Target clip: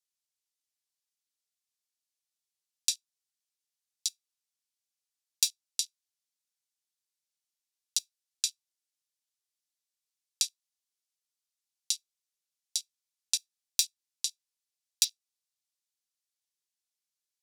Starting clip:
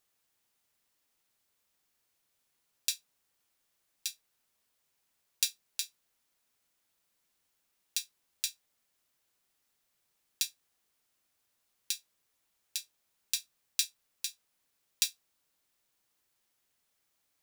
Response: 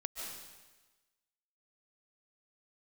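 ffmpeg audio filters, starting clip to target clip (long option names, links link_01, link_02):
-filter_complex "[0:a]afwtdn=0.00501,bandpass=frequency=4900:width_type=q:width=0.89:csg=0,asplit=2[link_01][link_02];[link_02]acompressor=threshold=-39dB:ratio=6,volume=-1dB[link_03];[link_01][link_03]amix=inputs=2:normalize=0,highshelf=frequency=5400:gain=10.5,volume=-2dB"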